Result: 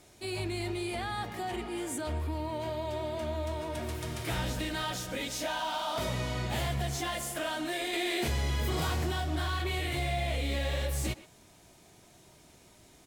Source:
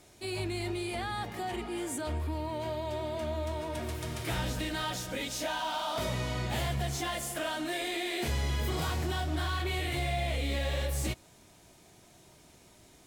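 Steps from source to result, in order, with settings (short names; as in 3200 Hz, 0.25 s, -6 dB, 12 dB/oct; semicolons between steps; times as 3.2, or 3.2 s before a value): speakerphone echo 0.12 s, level -15 dB; 7.93–9.09 fast leveller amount 50%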